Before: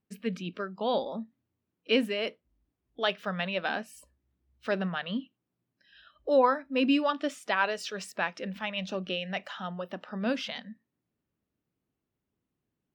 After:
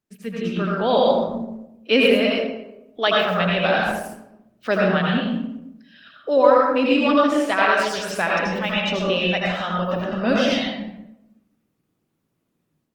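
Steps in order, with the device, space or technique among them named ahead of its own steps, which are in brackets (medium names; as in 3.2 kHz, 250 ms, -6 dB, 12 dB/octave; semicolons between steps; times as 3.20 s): far-field microphone of a smart speaker (reverberation RT60 0.90 s, pre-delay 76 ms, DRR -3.5 dB; high-pass 120 Hz 24 dB/octave; level rider gain up to 8 dB; Opus 20 kbps 48 kHz)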